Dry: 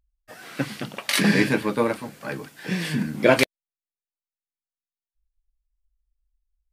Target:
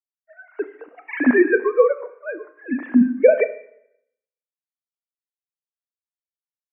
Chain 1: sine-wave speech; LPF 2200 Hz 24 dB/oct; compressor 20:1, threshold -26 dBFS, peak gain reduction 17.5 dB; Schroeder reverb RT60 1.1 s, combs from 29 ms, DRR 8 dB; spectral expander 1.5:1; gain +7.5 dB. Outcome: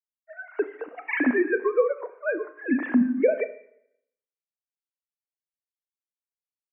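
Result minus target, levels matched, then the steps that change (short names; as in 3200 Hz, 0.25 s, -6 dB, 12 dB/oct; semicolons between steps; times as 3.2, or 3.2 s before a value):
compressor: peak gain reduction +9 dB
change: compressor 20:1, threshold -16.5 dBFS, peak gain reduction 8.5 dB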